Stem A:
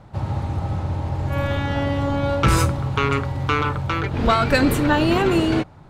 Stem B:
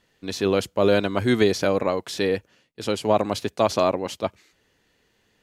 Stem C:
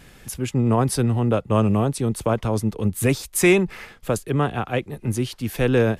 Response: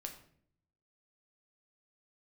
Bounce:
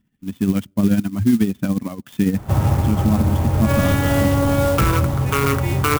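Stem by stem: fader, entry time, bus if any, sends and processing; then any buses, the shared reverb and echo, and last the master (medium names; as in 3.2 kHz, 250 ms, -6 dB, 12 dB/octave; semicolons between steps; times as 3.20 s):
0.0 dB, 2.35 s, bus A, no send, none
-8.0 dB, 0.00 s, bus A, send -24 dB, reverb removal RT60 1.1 s; resonant low shelf 330 Hz +12.5 dB, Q 3; tremolo 14 Hz, depth 61%
-15.0 dB, 2.20 s, no bus, no send, partials quantised in pitch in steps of 2 st
bus A: 0.0 dB, level rider gain up to 11.5 dB; peak limiter -7 dBFS, peak gain reduction 6 dB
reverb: on, RT60 0.60 s, pre-delay 6 ms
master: brick-wall FIR low-pass 3.7 kHz; band-stop 870 Hz, Q 12; sampling jitter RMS 0.044 ms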